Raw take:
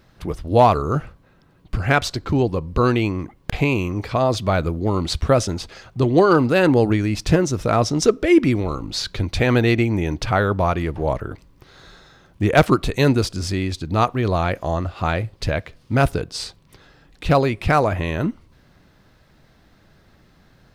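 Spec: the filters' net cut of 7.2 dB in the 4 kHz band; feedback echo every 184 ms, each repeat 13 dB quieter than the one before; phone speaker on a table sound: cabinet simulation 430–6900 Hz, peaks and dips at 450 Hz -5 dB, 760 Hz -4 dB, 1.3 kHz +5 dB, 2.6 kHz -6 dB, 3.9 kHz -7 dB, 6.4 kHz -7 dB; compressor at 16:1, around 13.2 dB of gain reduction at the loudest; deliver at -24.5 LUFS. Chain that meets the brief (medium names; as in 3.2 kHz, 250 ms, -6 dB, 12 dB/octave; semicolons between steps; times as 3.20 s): peaking EQ 4 kHz -3.5 dB; compression 16:1, threshold -22 dBFS; cabinet simulation 430–6900 Hz, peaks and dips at 450 Hz -5 dB, 760 Hz -4 dB, 1.3 kHz +5 dB, 2.6 kHz -6 dB, 3.9 kHz -7 dB, 6.4 kHz -7 dB; feedback delay 184 ms, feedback 22%, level -13 dB; trim +9 dB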